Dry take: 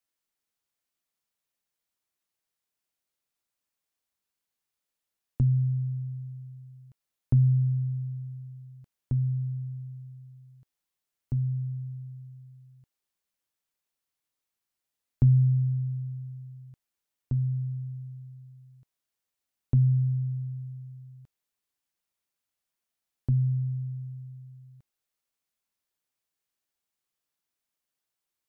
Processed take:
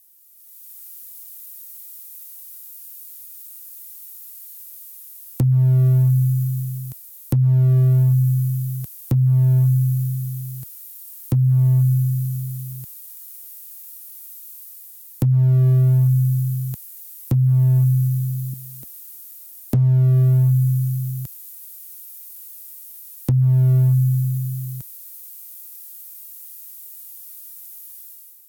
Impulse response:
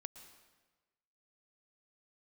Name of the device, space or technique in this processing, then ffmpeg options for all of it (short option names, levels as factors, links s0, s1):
FM broadcast chain: -filter_complex "[0:a]asettb=1/sr,asplit=3[s0][s1][s2];[s0]atrim=end=18.534[s3];[s1]atrim=start=18.53:end=19.74,asetpts=PTS-STARTPTS,afade=t=in:d=0.004:c=qsin,afade=t=out:st=1.206:d=0.004:c=qsin,equalizer=f=125:t=o:w=1:g=-11,equalizer=f=250:t=o:w=1:g=10,equalizer=f=500:t=o:w=1:g=6[s4];[s2]atrim=start=19.736[s5];[s3][s4]acrossfade=d=0.004:c1=hsin:c2=qsin[s6];[s6][s5]acrossfade=d=0.004:c1=qsin:c2=hsin,highpass=f=60:p=1,dynaudnorm=f=160:g=7:m=5.31,acrossover=split=99|280[s7][s8][s9];[s7]acompressor=threshold=0.0251:ratio=4[s10];[s8]acompressor=threshold=0.0794:ratio=4[s11];[s9]acompressor=threshold=0.00282:ratio=4[s12];[s10][s11][s12]amix=inputs=3:normalize=0,aemphasis=mode=production:type=50fm,alimiter=limit=0.158:level=0:latency=1:release=450,asoftclip=type=hard:threshold=0.1,lowpass=f=15000:w=0.5412,lowpass=f=15000:w=1.3066,aemphasis=mode=production:type=50fm,volume=2.66"